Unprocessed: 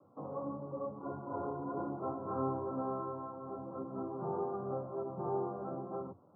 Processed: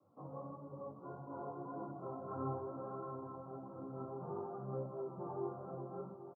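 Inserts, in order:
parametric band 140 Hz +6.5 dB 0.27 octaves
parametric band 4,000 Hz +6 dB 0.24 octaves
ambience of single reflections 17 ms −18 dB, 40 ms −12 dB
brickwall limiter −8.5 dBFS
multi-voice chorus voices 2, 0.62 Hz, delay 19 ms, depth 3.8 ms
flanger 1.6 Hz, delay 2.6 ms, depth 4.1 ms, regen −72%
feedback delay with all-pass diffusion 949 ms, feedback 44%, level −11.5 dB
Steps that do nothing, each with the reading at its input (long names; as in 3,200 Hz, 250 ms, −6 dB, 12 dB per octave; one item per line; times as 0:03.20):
parametric band 4,000 Hz: nothing at its input above 1,400 Hz
brickwall limiter −8.5 dBFS: peak of its input −23.0 dBFS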